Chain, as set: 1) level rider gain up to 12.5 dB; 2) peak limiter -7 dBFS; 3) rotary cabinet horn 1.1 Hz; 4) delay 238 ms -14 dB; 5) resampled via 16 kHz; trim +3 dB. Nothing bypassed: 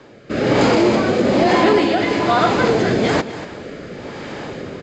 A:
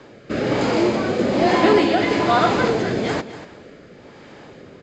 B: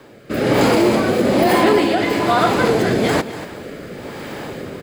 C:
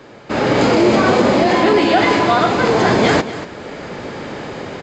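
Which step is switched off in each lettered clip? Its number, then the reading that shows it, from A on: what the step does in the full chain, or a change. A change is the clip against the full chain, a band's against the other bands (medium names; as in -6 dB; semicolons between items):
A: 1, momentary loudness spread change -6 LU; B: 5, 8 kHz band +3.5 dB; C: 3, crest factor change -2.5 dB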